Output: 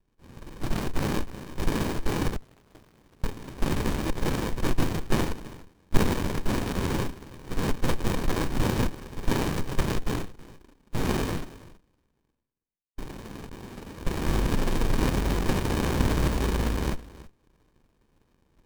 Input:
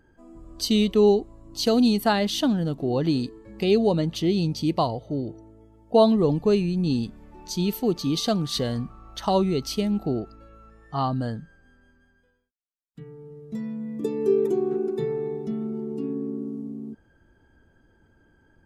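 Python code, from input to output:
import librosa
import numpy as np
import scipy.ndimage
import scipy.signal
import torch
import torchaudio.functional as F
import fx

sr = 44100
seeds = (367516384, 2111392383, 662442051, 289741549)

y = fx.band_invert(x, sr, width_hz=1000)
y = fx.noise_vocoder(y, sr, seeds[0], bands=1)
y = fx.level_steps(y, sr, step_db=22, at=(13.49, 14.07))
y = fx.leveller(y, sr, passes=2)
y = y + 10.0 ** (-18.5 / 20.0) * np.pad(y, (int(324 * sr / 1000.0), 0))[:len(y)]
y = fx.rider(y, sr, range_db=5, speed_s=0.5)
y = fx.high_shelf(y, sr, hz=4900.0, db=8.5)
y = fx.overflow_wrap(y, sr, gain_db=21.5, at=(2.36, 3.24))
y = fx.env_flanger(y, sr, rest_ms=5.9, full_db=-18.0, at=(9.95, 11.01))
y = fx.running_max(y, sr, window=65)
y = F.gain(torch.from_numpy(y), -6.0).numpy()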